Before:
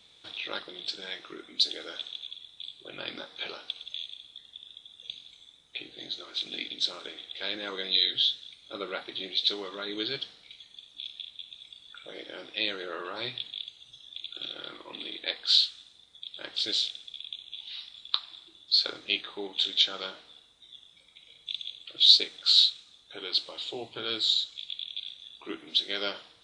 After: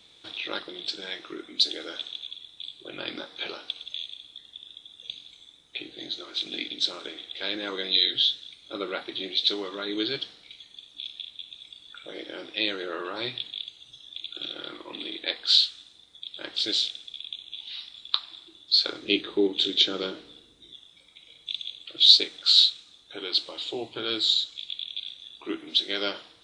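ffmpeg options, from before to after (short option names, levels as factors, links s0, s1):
-filter_complex "[0:a]asettb=1/sr,asplit=3[s0][s1][s2];[s0]atrim=end=19.024[s3];[s1]atrim=start=19.02:end=20.74,asetpts=PTS-STARTPTS,afade=t=in:d=0.004:c=qsin,afade=t=out:st=1.716:d=0.004:c=qsin,lowshelf=f=540:t=q:w=1.5:g=8[s4];[s2]atrim=start=20.736[s5];[s3][s4]acrossfade=d=0.004:c1=hsin:c2=qsin[s6];[s6][s5]acrossfade=d=0.004:c1=qsin:c2=hsin,equalizer=f=320:t=o:w=0.59:g=5,volume=1.33"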